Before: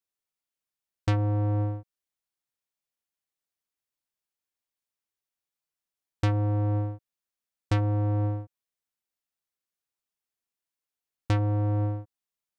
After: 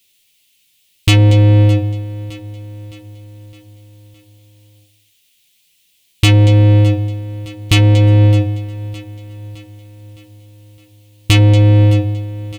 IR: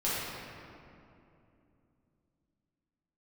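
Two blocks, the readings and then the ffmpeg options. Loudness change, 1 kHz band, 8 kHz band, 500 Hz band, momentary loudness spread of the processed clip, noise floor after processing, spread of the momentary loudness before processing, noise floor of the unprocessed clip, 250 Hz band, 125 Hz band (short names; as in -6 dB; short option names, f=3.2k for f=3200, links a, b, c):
+16.0 dB, +9.0 dB, n/a, +15.5 dB, 19 LU, -58 dBFS, 10 LU, under -85 dBFS, +16.0 dB, +17.5 dB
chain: -filter_complex "[0:a]firequalizer=gain_entry='entry(130,0);entry(1000,-14);entry(2900,-10);entry(5100,-22)':delay=0.05:min_phase=1,asplit=2[a][b];[b]aecho=0:1:235:0.112[c];[a][c]amix=inputs=2:normalize=0,aexciter=amount=9.1:drive=8.6:freq=2.2k,asplit=2[d][e];[e]adelay=12,volume=-7dB[f];[d][f]amix=inputs=2:normalize=0,apsyclip=31.5dB,asplit=2[g][h];[h]aecho=0:1:613|1226|1839|2452|3065:0.141|0.0735|0.0382|0.0199|0.0103[i];[g][i]amix=inputs=2:normalize=0,volume=-5.5dB"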